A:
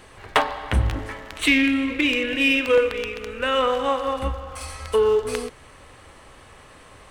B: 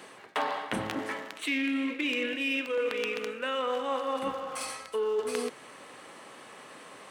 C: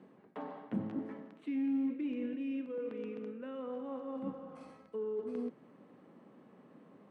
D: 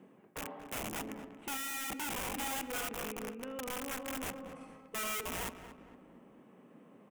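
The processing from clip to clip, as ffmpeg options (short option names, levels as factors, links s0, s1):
-af "highpass=f=180:w=0.5412,highpass=f=180:w=1.3066,areverse,acompressor=threshold=0.0398:ratio=6,areverse"
-filter_complex "[0:a]bandpass=f=200:t=q:w=2.1:csg=0,asplit=2[s0][s1];[s1]volume=59.6,asoftclip=hard,volume=0.0168,volume=0.251[s2];[s0][s2]amix=inputs=2:normalize=0,volume=1.12"
-filter_complex "[0:a]aeval=exprs='(mod(59.6*val(0)+1,2)-1)/59.6':c=same,aexciter=amount=1.5:drive=2.4:freq=2300,asplit=2[s0][s1];[s1]adelay=230,lowpass=f=2300:p=1,volume=0.282,asplit=2[s2][s3];[s3]adelay=230,lowpass=f=2300:p=1,volume=0.43,asplit=2[s4][s5];[s5]adelay=230,lowpass=f=2300:p=1,volume=0.43,asplit=2[s6][s7];[s7]adelay=230,lowpass=f=2300:p=1,volume=0.43[s8];[s0][s2][s4][s6][s8]amix=inputs=5:normalize=0"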